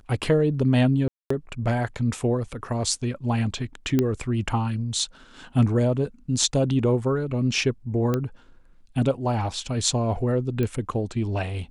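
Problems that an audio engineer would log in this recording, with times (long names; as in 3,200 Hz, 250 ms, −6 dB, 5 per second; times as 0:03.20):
0:01.08–0:01.30: drop-out 224 ms
0:03.99: click −9 dBFS
0:08.14: click −12 dBFS
0:10.63: click −15 dBFS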